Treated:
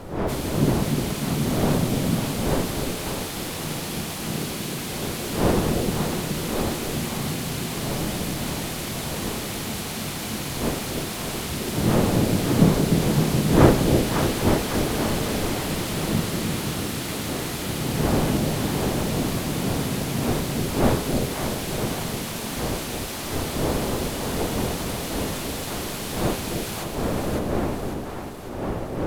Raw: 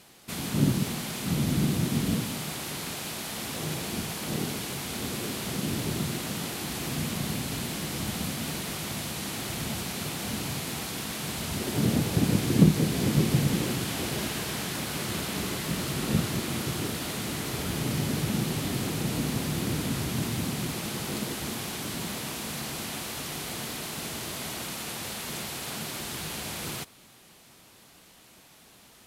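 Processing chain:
wind on the microphone 460 Hz −30 dBFS
pitch-shifted copies added +7 semitones −11 dB
echo with a time of its own for lows and highs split 710 Hz, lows 301 ms, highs 551 ms, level −5 dB
level +1 dB

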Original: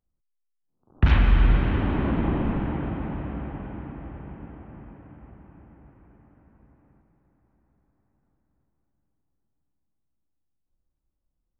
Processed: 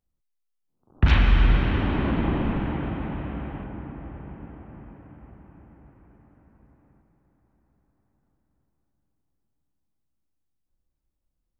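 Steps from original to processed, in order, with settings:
0:01.08–0:03.64: high-shelf EQ 3,200 Hz +11 dB

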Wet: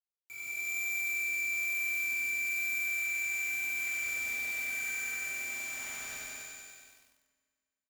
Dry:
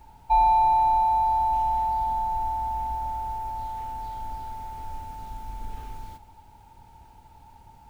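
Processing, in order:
noise reduction from a noise print of the clip's start 11 dB
Chebyshev high-pass filter 880 Hz, order 5
dynamic equaliser 1,300 Hz, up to +7 dB, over −48 dBFS, Q 0.96
brickwall limiter −31.5 dBFS, peak gain reduction 11 dB
reversed playback
downward compressor 8 to 1, threshold −50 dBFS, peak gain reduction 15.5 dB
reversed playback
pitch shifter −8 semitones
voice inversion scrambler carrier 2,900 Hz
flanger 1.1 Hz, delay 5.1 ms, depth 8.5 ms, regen −41%
log-companded quantiser 4 bits
loudspeakers that aren't time-aligned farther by 35 metres −4 dB, 65 metres −5 dB, 95 metres −5 dB
convolution reverb RT60 2.0 s, pre-delay 4 ms, DRR −4.5 dB
feedback echo at a low word length 96 ms, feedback 80%, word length 11 bits, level −4 dB
level +4 dB

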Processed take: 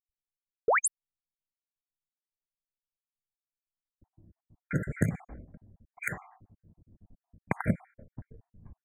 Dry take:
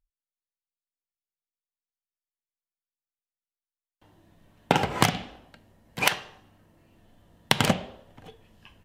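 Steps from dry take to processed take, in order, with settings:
time-frequency cells dropped at random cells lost 52%
noise gate −53 dBFS, range −6 dB
sound drawn into the spectrogram rise, 0:00.68–0:00.88, 380–12,000 Hz −13 dBFS
bass and treble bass +12 dB, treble −3 dB
downward compressor 2 to 1, threshold −31 dBFS, peak gain reduction 11.5 dB
low-pass that shuts in the quiet parts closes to 380 Hz, open at −27 dBFS
linear-phase brick-wall band-stop 2,400–6,400 Hz

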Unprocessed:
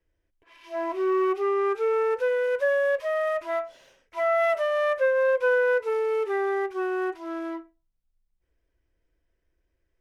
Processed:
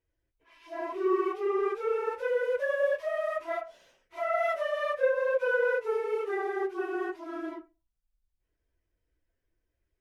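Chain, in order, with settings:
random phases in long frames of 50 ms
level −5 dB

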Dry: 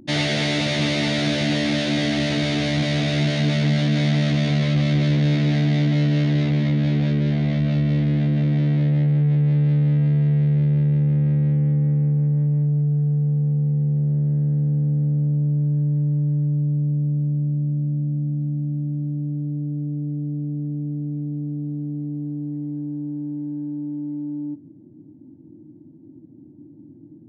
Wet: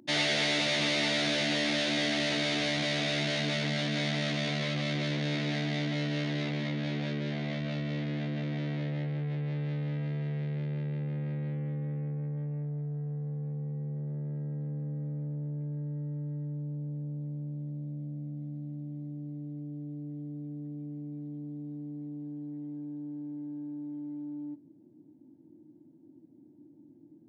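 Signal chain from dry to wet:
high-pass filter 570 Hz 6 dB per octave
level −3.5 dB

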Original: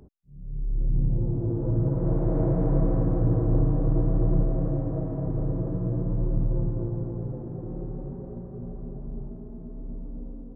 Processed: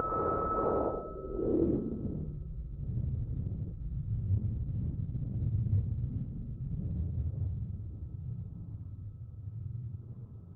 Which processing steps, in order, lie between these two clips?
sub-harmonics by changed cycles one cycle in 3, inverted
hum removal 124.7 Hz, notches 5
extreme stretch with random phases 16×, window 0.05 s, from 0:00.69
band-pass filter sweep 470 Hz → 1,200 Hz, 0:06.69–0:09.21
steady tone 1,300 Hz −44 dBFS
low-pass filter sweep 1,200 Hz → 110 Hz, 0:00.56–0:02.52
level +8 dB
Opus 8 kbit/s 48,000 Hz

